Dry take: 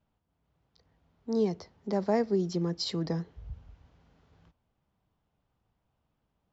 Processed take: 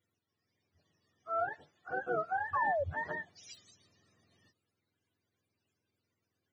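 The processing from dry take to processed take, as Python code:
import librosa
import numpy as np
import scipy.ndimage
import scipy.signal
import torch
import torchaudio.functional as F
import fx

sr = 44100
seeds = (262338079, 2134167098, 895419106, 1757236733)

y = fx.octave_mirror(x, sr, pivot_hz=550.0)
y = fx.low_shelf(y, sr, hz=330.0, db=-8.0, at=(1.29, 2.35))
y = fx.spec_paint(y, sr, seeds[0], shape='fall', start_s=2.53, length_s=0.31, low_hz=530.0, high_hz=1200.0, level_db=-28.0)
y = y * librosa.db_to_amplitude(-3.5)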